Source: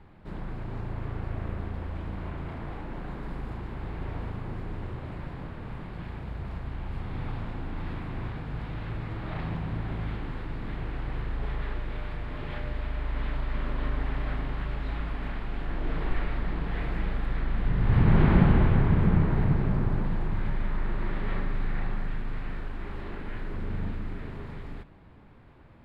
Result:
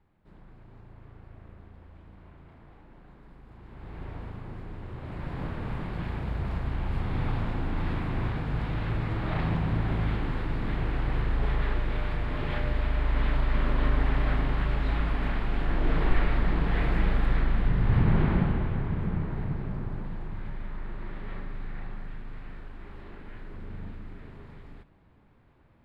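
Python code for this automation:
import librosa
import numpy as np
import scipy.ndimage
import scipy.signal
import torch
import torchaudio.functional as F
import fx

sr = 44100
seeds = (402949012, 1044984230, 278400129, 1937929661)

y = fx.gain(x, sr, db=fx.line((3.45, -15.5), (3.99, -4.5), (4.84, -4.5), (5.44, 5.0), (17.34, 5.0), (18.62, -7.5)))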